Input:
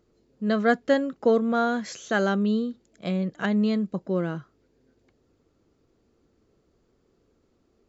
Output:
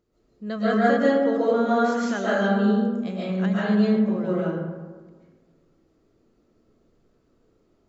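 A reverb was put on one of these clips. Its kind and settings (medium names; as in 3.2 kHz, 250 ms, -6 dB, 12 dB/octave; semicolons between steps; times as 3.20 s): algorithmic reverb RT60 1.5 s, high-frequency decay 0.4×, pre-delay 95 ms, DRR -8.5 dB; trim -7 dB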